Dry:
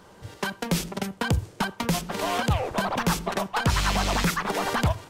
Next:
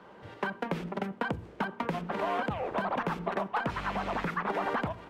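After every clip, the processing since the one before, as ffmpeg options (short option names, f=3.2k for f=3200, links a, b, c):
-filter_complex "[0:a]bandreject=f=58.45:t=h:w=4,bandreject=f=116.9:t=h:w=4,bandreject=f=175.35:t=h:w=4,bandreject=f=233.8:t=h:w=4,bandreject=f=292.25:t=h:w=4,bandreject=f=350.7:t=h:w=4,bandreject=f=409.15:t=h:w=4,bandreject=f=467.6:t=h:w=4,acrossover=split=2100|6400[a][b][c];[a]acompressor=threshold=-27dB:ratio=4[d];[b]acompressor=threshold=-46dB:ratio=4[e];[c]acompressor=threshold=-44dB:ratio=4[f];[d][e][f]amix=inputs=3:normalize=0,acrossover=split=160 3200:gain=0.224 1 0.0794[g][h][i];[g][h][i]amix=inputs=3:normalize=0"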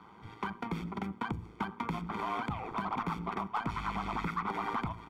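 -filter_complex "[0:a]aecho=1:1:0.9:0.86,asplit=2[a][b];[b]asoftclip=type=tanh:threshold=-29dB,volume=-5dB[c];[a][c]amix=inputs=2:normalize=0,tremolo=f=110:d=0.571,volume=-5.5dB"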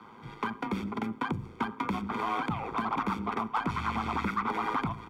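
-af "afreqshift=27,volume=4dB"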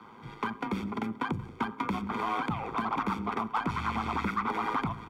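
-af "aecho=1:1:181:0.0891"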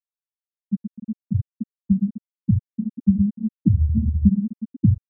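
-af "asubboost=boost=9:cutoff=210,aecho=1:1:10|63:0.531|0.141,afftfilt=real='re*gte(hypot(re,im),0.631)':imag='im*gte(hypot(re,im),0.631)':win_size=1024:overlap=0.75,volume=5dB"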